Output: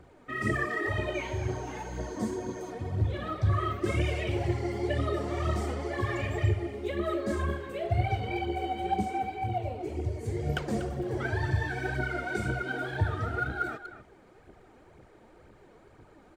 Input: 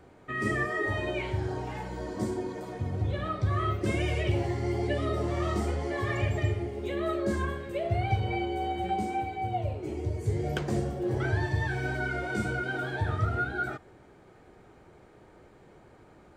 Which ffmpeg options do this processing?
ffmpeg -i in.wav -filter_complex "[0:a]asettb=1/sr,asplit=3[link_01][link_02][link_03];[link_01]atrim=end=1.144[link_04];[link_02]atrim=start=1.14:end=2.7,asetpts=PTS-STARTPTS,afade=type=in:duration=0.004:curve=qsin,afade=type=out:start_time=1.556:duration=0.004:curve=qsin,aeval=exprs='val(0)+0.00224*sin(2*PI*6400*n/s)':channel_layout=same[link_05];[link_03]atrim=start=2.696[link_06];[link_04][link_05]acrossfade=duration=0.004:curve1=hsin:curve2=qsin[link_07];[link_07][link_06]acrossfade=duration=0.004:curve1=qsin:curve2=hsin,aphaser=in_gain=1:out_gain=1:delay=4.6:decay=0.54:speed=2:type=triangular,asplit=2[link_08][link_09];[link_09]adelay=240,highpass=300,lowpass=3400,asoftclip=type=hard:threshold=-21.5dB,volume=-11dB[link_10];[link_08][link_10]amix=inputs=2:normalize=0,volume=-2.5dB" out.wav

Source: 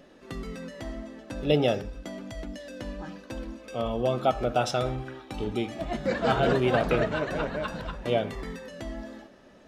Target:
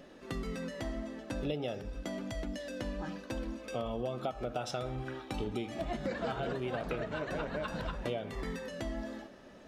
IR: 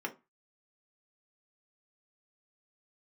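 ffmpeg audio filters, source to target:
-af "acompressor=threshold=-32dB:ratio=12"

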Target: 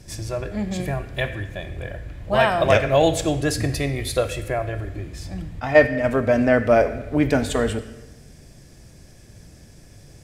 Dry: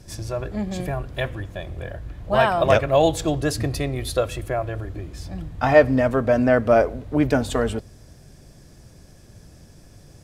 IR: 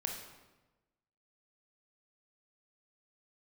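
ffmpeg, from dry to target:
-filter_complex "[0:a]asplit=3[link_01][link_02][link_03];[link_01]afade=type=out:start_time=5.59:duration=0.02[link_04];[link_02]agate=range=-7dB:threshold=-16dB:ratio=16:detection=peak,afade=type=in:start_time=5.59:duration=0.02,afade=type=out:start_time=6.03:duration=0.02[link_05];[link_03]afade=type=in:start_time=6.03:duration=0.02[link_06];[link_04][link_05][link_06]amix=inputs=3:normalize=0,asplit=2[link_07][link_08];[link_08]equalizer=frequency=1000:width_type=o:width=1:gain=-9,equalizer=frequency=2000:width_type=o:width=1:gain=11,equalizer=frequency=8000:width_type=o:width=1:gain=6[link_09];[1:a]atrim=start_sample=2205[link_10];[link_09][link_10]afir=irnorm=-1:irlink=0,volume=-6.5dB[link_11];[link_07][link_11]amix=inputs=2:normalize=0,volume=-2.5dB"

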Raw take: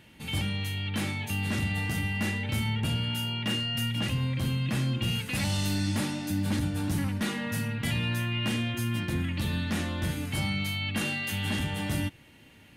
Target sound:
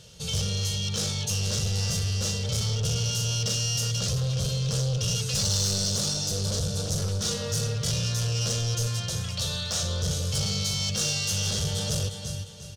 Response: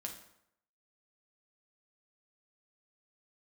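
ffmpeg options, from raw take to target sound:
-filter_complex "[0:a]asettb=1/sr,asplit=3[link_01][link_02][link_03];[link_01]atrim=end=8.874[link_04];[link_02]atrim=start=8.87:end=9.83,asetpts=PTS-STARTPTS,afade=type=in:duration=0.004:curve=qsin,afade=type=out:start_time=0.956:duration=0.004:curve=qsin,lowshelf=frequency=480:width_type=q:width=1.5:gain=-8.5[link_05];[link_03]atrim=start=9.826[link_06];[link_04][link_05]acrossfade=duration=0.004:curve1=hsin:curve2=qsin[link_07];[link_07][link_06]acrossfade=duration=0.004:curve1=qsin:curve2=hsin,asplit=2[link_08][link_09];[link_09]aecho=0:1:353|706|1059|1412:0.316|0.111|0.0387|0.0136[link_10];[link_08][link_10]amix=inputs=2:normalize=0,asoftclip=type=hard:threshold=-29.5dB,firequalizer=gain_entry='entry(170,0);entry(270,-25);entry(450,5);entry(850,-11);entry(1300,-4);entry(2000,-17);entry(3300,1);entry(5700,15);entry(9700,0);entry(15000,-8)':delay=0.05:min_phase=1,asoftclip=type=tanh:threshold=-23.5dB,volume=6.5dB"

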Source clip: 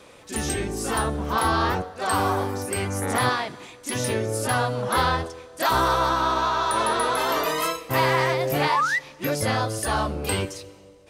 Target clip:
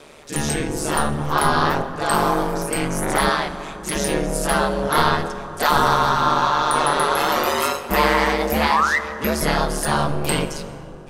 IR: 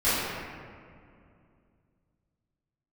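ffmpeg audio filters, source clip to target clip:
-filter_complex "[0:a]aeval=exprs='val(0)*sin(2*PI*74*n/s)':channel_layout=same,asplit=2[link_01][link_02];[1:a]atrim=start_sample=2205,asetrate=28224,aresample=44100[link_03];[link_02][link_03]afir=irnorm=-1:irlink=0,volume=-29dB[link_04];[link_01][link_04]amix=inputs=2:normalize=0,volume=6.5dB"

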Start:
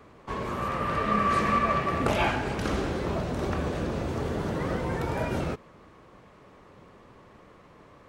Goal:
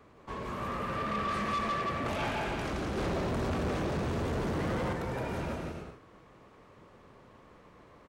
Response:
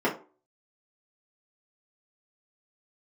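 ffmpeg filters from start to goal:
-filter_complex "[0:a]aecho=1:1:170|280.5|352.3|399|429.4:0.631|0.398|0.251|0.158|0.1,asettb=1/sr,asplit=3[link_01][link_02][link_03];[link_01]atrim=end=2.974[link_04];[link_02]atrim=start=2.97:end=4.93,asetpts=PTS-STARTPTS,afade=type=in:duration=0.004:curve=qsin,afade=type=out:start_time=1.956:duration=0.004:curve=qsin,acontrast=48[link_05];[link_03]atrim=start=4.926[link_06];[link_04][link_05]acrossfade=duration=0.004:curve1=hsin:curve2=qsin[link_07];[link_07][link_06]acrossfade=duration=0.004:curve1=qsin:curve2=hsin,asoftclip=type=tanh:threshold=-22.5dB,volume=-5.5dB"

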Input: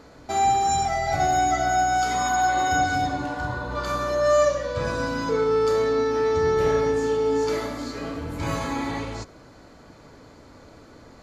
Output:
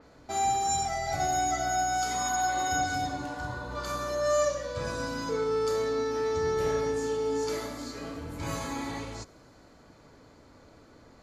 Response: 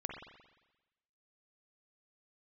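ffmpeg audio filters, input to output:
-af "adynamicequalizer=threshold=0.00562:dfrequency=4600:dqfactor=0.7:tfrequency=4600:tqfactor=0.7:attack=5:release=100:ratio=0.375:range=4:mode=boostabove:tftype=highshelf,volume=-7dB"

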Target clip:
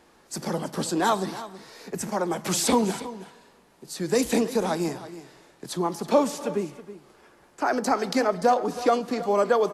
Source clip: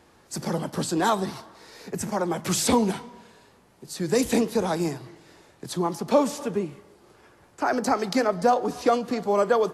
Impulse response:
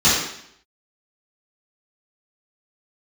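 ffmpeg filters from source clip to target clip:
-af "equalizer=frequency=99:width_type=o:width=0.81:gain=-12,aecho=1:1:323:0.178"

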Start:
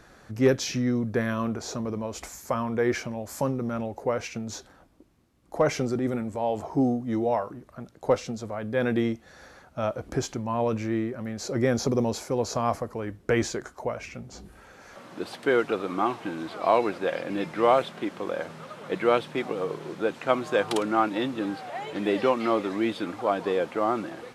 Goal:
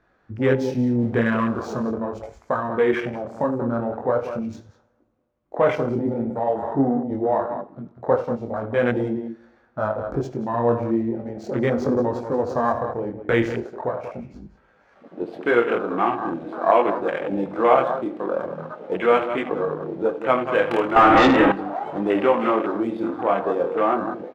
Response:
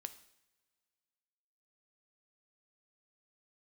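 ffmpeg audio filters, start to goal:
-filter_complex "[0:a]asettb=1/sr,asplit=3[link_01][link_02][link_03];[link_01]atrim=end=0.994[link_04];[link_02]atrim=start=0.99:end=1.83,asetpts=PTS-STARTPTS,afade=type=in:duration=0.004:curve=qsin,afade=type=out:start_time=0.836:duration=0.004:curve=qsin,aeval=exprs='val(0)+0.5*0.0224*sgn(val(0))':channel_layout=same[link_05];[link_03]atrim=start=1.826[link_06];[link_04][link_05]acrossfade=duration=0.004:curve1=hsin:curve2=qsin[link_07];[link_07][link_06]acrossfade=duration=0.004:curve1=qsin:curve2=hsin,lowshelf=frequency=350:gain=-6,aecho=1:1:75.8|186.6:0.282|0.316,asplit=2[link_08][link_09];[link_09]acompressor=threshold=-34dB:ratio=6,volume=-2dB[link_10];[link_08][link_10]amix=inputs=2:normalize=0,flanger=delay=19.5:depth=6.5:speed=0.41,adynamicsmooth=sensitivity=7:basefreq=2100,asettb=1/sr,asplit=3[link_11][link_12][link_13];[link_11]atrim=end=20.964[link_14];[link_12]atrim=start=20.96:end=21.52,asetpts=PTS-STARTPTS,afade=type=in:duration=0.004:curve=qsin,afade=type=out:start_time=0.556:duration=0.004:curve=qsin,asplit=2[link_15][link_16];[link_16]highpass=frequency=720:poles=1,volume=29dB,asoftclip=type=tanh:threshold=-11.5dB[link_17];[link_15][link_17]amix=inputs=2:normalize=0,lowpass=frequency=1500:poles=1,volume=-6dB[link_18];[link_13]atrim=start=21.516[link_19];[link_14][link_18]acrossfade=duration=0.004:curve1=hsin:curve2=qsin[link_20];[link_20][link_19]acrossfade=duration=0.004:curve1=qsin:curve2=hsin,afwtdn=0.0178,asplit=2[link_21][link_22];[1:a]atrim=start_sample=2205[link_23];[link_22][link_23]afir=irnorm=-1:irlink=0,volume=4.5dB[link_24];[link_21][link_24]amix=inputs=2:normalize=0,volume=1dB"

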